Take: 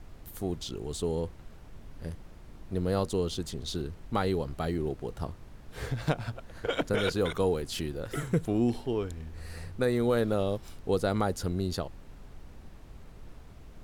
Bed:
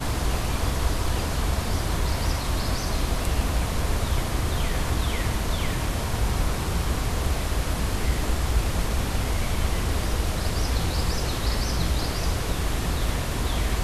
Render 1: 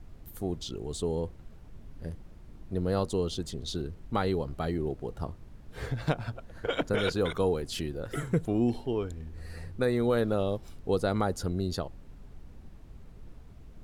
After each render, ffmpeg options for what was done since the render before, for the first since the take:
-af "afftdn=nr=6:nf=-50"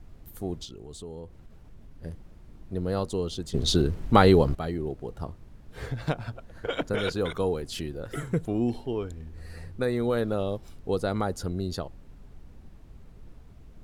-filter_complex "[0:a]asettb=1/sr,asplit=3[a][b][c];[a]atrim=end=0.654[d];[b]atrim=start=0.65:end=2.03,asetpts=PTS-STARTPTS,afade=t=in:d=0.004:c=qsin,afade=t=out:st=1.376:d=0.004:c=qsin,acompressor=threshold=-44dB:ratio=2:attack=3.2:release=140:knee=1:detection=peak[e];[c]atrim=start=2.026[f];[d][e]acrossfade=d=0.004:c1=hsin:c2=qsin[g];[g][f]acrossfade=d=0.004:c1=qsin:c2=hsin,asplit=3[h][i][j];[h]atrim=end=3.542[k];[i]atrim=start=3.538:end=4.552,asetpts=PTS-STARTPTS,volume=11.5dB[l];[j]atrim=start=4.548[m];[k][l]acrossfade=d=0.004:c1=hsin:c2=hsin[n];[n][m]acrossfade=d=0.004:c1=hsin:c2=hsin"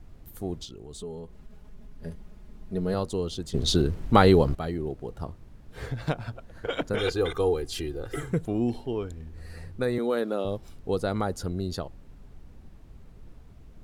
-filter_complex "[0:a]asettb=1/sr,asplit=3[a][b][c];[a]atrim=end=0.944[d];[b]atrim=start=0.94:end=2.94,asetpts=PTS-STARTPTS,afade=t=in:d=0.004:c=qsin,afade=t=out:st=1.996:d=0.004:c=qsin,aecho=1:1:4.8:0.65,atrim=end_sample=88200[e];[c]atrim=start=2.936[f];[d][e]acrossfade=d=0.004:c1=hsin:c2=qsin[g];[g][f]acrossfade=d=0.004:c1=qsin:c2=hsin,asettb=1/sr,asplit=3[h][i][j];[h]atrim=end=6.984[k];[i]atrim=start=6.98:end=8.31,asetpts=PTS-STARTPTS,afade=t=in:d=0.004:c=qsin,afade=t=out:st=1.326:d=0.004:c=qsin,aecho=1:1:2.5:0.65,atrim=end_sample=58653[l];[j]atrim=start=8.306[m];[k][l]acrossfade=d=0.004:c1=hsin:c2=qsin[n];[n][m]acrossfade=d=0.004:c1=qsin:c2=hsin,asettb=1/sr,asplit=3[o][p][q];[o]atrim=end=9.984[r];[p]atrim=start=9.98:end=10.45,asetpts=PTS-STARTPTS,afade=t=in:d=0.004:c=qsin,afade=t=out:st=0.466:d=0.004:c=qsin,highpass=f=210:w=0.5412,highpass=f=210:w=1.3066[s];[q]atrim=start=10.446[t];[r][s]acrossfade=d=0.004:c1=hsin:c2=qsin[u];[u][t]acrossfade=d=0.004:c1=qsin:c2=hsin"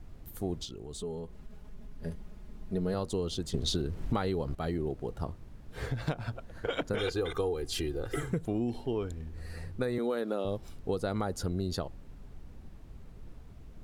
-af "acompressor=threshold=-27dB:ratio=16"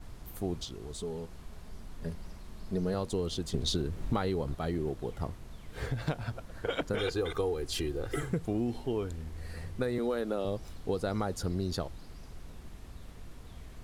-filter_complex "[1:a]volume=-27.5dB[a];[0:a][a]amix=inputs=2:normalize=0"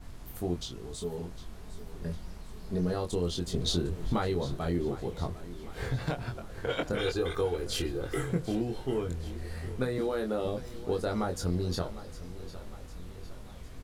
-filter_complex "[0:a]asplit=2[a][b];[b]adelay=23,volume=-4dB[c];[a][c]amix=inputs=2:normalize=0,aecho=1:1:755|1510|2265|3020|3775:0.168|0.094|0.0526|0.0295|0.0165"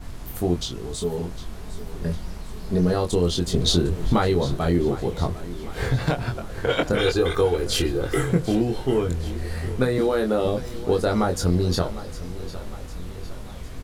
-af "volume=9.5dB"

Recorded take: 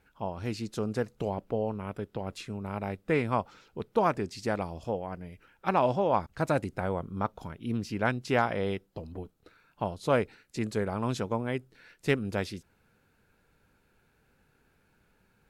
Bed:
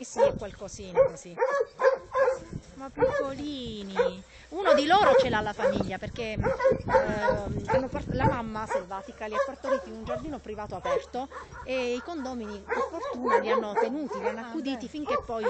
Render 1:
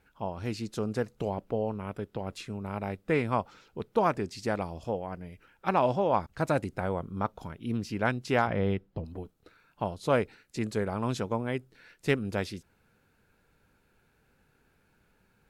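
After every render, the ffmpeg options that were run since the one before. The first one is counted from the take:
-filter_complex "[0:a]asettb=1/sr,asplit=3[a][b][c];[a]atrim=end=8.474[d];[b]atrim=start=8.47:end=9.05,asetpts=PTS-STARTPTS,afade=t=in:d=0.004:c=qsin,afade=t=out:st=0.576:d=0.004:c=qsin,bass=f=250:g=7,treble=f=4k:g=-12[e];[c]atrim=start=9.046[f];[d][e]acrossfade=d=0.004:c1=hsin:c2=qsin[g];[g][f]acrossfade=d=0.004:c1=qsin:c2=hsin"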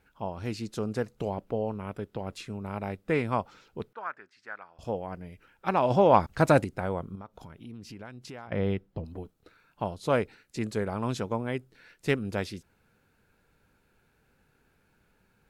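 -filter_complex "[0:a]asettb=1/sr,asplit=3[a][b][c];[a]atrim=end=3.934[d];[b]atrim=start=3.93:end=4.79,asetpts=PTS-STARTPTS,afade=t=in:d=0.004:c=qsin,afade=t=out:st=0.856:d=0.004:c=qsin,bandpass=f=1.5k:t=q:w=3.7[e];[c]atrim=start=4.786[f];[d][e]acrossfade=d=0.004:c1=hsin:c2=qsin[g];[g][f]acrossfade=d=0.004:c1=qsin:c2=hsin,asplit=3[h][i][j];[h]afade=t=out:st=5.9:d=0.02[k];[i]acontrast=78,afade=t=in:st=5.9:d=0.02,afade=t=out:st=6.63:d=0.02[l];[j]afade=t=in:st=6.63:d=0.02[m];[k][l][m]amix=inputs=3:normalize=0,asettb=1/sr,asplit=3[n][o][p];[n]atrim=end=7.154[q];[o]atrim=start=7.15:end=8.52,asetpts=PTS-STARTPTS,afade=t=in:d=0.004:c=qsin,afade=t=out:st=1.366:d=0.004:c=qsin,acompressor=threshold=-42dB:ratio=4:attack=3.2:release=140:knee=1:detection=peak[r];[p]atrim=start=8.516[s];[q][r]acrossfade=d=0.004:c1=hsin:c2=qsin[t];[t][s]acrossfade=d=0.004:c1=qsin:c2=hsin"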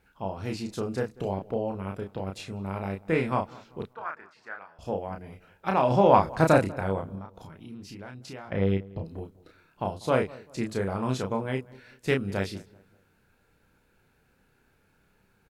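-filter_complex "[0:a]asplit=2[a][b];[b]adelay=31,volume=-4dB[c];[a][c]amix=inputs=2:normalize=0,asplit=2[d][e];[e]adelay=194,lowpass=f=1.7k:p=1,volume=-21dB,asplit=2[f][g];[g]adelay=194,lowpass=f=1.7k:p=1,volume=0.4,asplit=2[h][i];[i]adelay=194,lowpass=f=1.7k:p=1,volume=0.4[j];[d][f][h][j]amix=inputs=4:normalize=0"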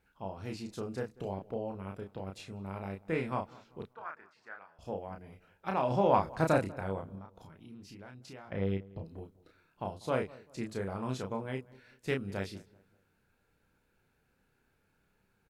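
-af "volume=-7.5dB"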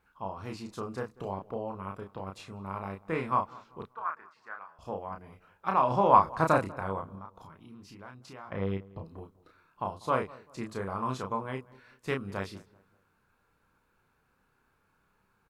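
-af "equalizer=f=1.1k:t=o:w=0.57:g=13"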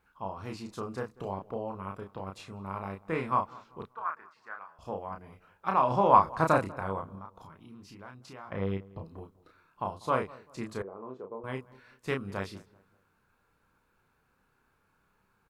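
-filter_complex "[0:a]asettb=1/sr,asplit=3[a][b][c];[a]atrim=end=10.824[d];[b]atrim=start=10.82:end=11.44,asetpts=PTS-STARTPTS,afade=t=in:d=0.004:c=qsin,afade=t=out:st=0.616:d=0.004:c=qsin,bandpass=f=420:t=q:w=2.7[e];[c]atrim=start=11.436[f];[d][e]acrossfade=d=0.004:c1=hsin:c2=qsin[g];[g][f]acrossfade=d=0.004:c1=qsin:c2=hsin"

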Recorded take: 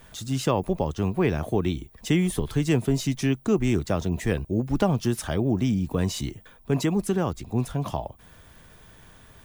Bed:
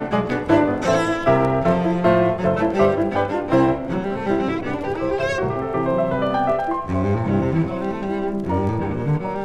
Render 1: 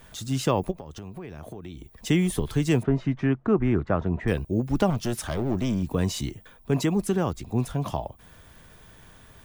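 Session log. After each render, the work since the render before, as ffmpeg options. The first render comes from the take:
-filter_complex "[0:a]asplit=3[a][b][c];[a]afade=t=out:st=0.7:d=0.02[d];[b]acompressor=threshold=-35dB:ratio=8:attack=3.2:release=140:knee=1:detection=peak,afade=t=in:st=0.7:d=0.02,afade=t=out:st=1.94:d=0.02[e];[c]afade=t=in:st=1.94:d=0.02[f];[d][e][f]amix=inputs=3:normalize=0,asettb=1/sr,asplit=3[g][h][i];[g]atrim=end=2.834[j];[h]atrim=start=2.83:end=4.28,asetpts=PTS-STARTPTS,afade=t=in:d=0.004:c=qsin,afade=t=out:st=1.446:d=0.004:c=qsin,lowpass=f=1.5k:t=q:w=1.6[k];[i]atrim=start=4.276[l];[j][k]acrossfade=d=0.004:c1=hsin:c2=qsin[m];[m][l]acrossfade=d=0.004:c1=qsin:c2=hsin,asettb=1/sr,asplit=3[n][o][p];[n]atrim=end=4.904[q];[o]atrim=start=4.9:end=5.83,asetpts=PTS-STARTPTS,afade=t=in:d=0.004:c=qsin,afade=t=out:st=0.926:d=0.004:c=qsin,aeval=exprs='clip(val(0),-1,0.0562)':c=same[r];[p]atrim=start=5.826[s];[q][r]acrossfade=d=0.004:c1=hsin:c2=qsin[t];[t][s]acrossfade=d=0.004:c1=qsin:c2=hsin"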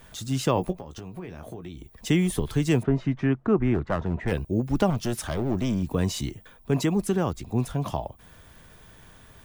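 -filter_complex "[0:a]asettb=1/sr,asplit=3[a][b][c];[a]atrim=end=0.544[d];[b]atrim=start=0.54:end=1.69,asetpts=PTS-STARTPTS,afade=t=in:d=0.004:c=qsin,afade=t=out:st=1.146:d=0.004:c=qsin,asplit=2[e][f];[f]adelay=17,volume=-8dB[g];[e][g]amix=inputs=2:normalize=0,atrim=end_sample=50715[h];[c]atrim=start=1.686[i];[d][h]acrossfade=d=0.004:c1=hsin:c2=qsin[j];[j][i]acrossfade=d=0.004:c1=qsin:c2=hsin,asplit=3[k][l][m];[k]afade=t=out:st=3.73:d=0.02[n];[l]aeval=exprs='clip(val(0),-1,0.0841)':c=same,afade=t=in:st=3.73:d=0.02,afade=t=out:st=4.31:d=0.02[o];[m]afade=t=in:st=4.31:d=0.02[p];[n][o][p]amix=inputs=3:normalize=0"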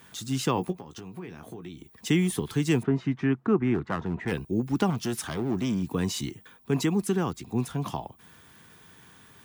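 -af "highpass=140,equalizer=f=590:t=o:w=0.42:g=-11"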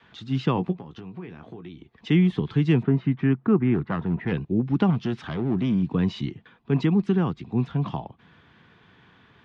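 -af "lowpass=f=3.7k:w=0.5412,lowpass=f=3.7k:w=1.3066,adynamicequalizer=threshold=0.0126:dfrequency=160:dqfactor=1.1:tfrequency=160:tqfactor=1.1:attack=5:release=100:ratio=0.375:range=3.5:mode=boostabove:tftype=bell"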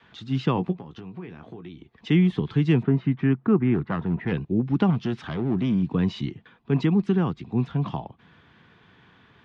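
-af anull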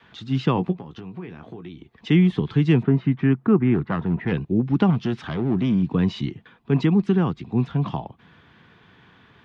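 -af "volume=2.5dB"

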